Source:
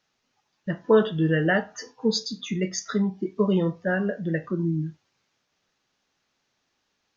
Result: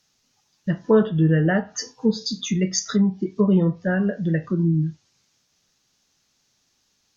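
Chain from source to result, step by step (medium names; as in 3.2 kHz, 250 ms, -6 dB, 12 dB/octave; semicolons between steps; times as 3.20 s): low-pass that closes with the level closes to 1.7 kHz, closed at -19 dBFS; tone controls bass +8 dB, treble +15 dB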